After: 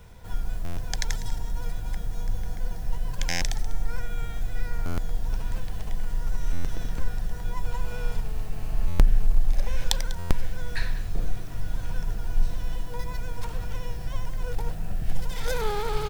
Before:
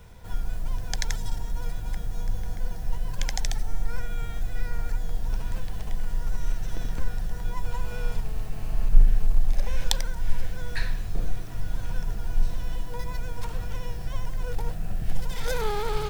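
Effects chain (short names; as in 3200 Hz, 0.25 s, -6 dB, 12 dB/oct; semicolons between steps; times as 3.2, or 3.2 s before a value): on a send: echo 0.196 s -17 dB; on the sum: stuck buffer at 0.64/3.29/4.85/6.52/8.87/10.18, samples 512, times 10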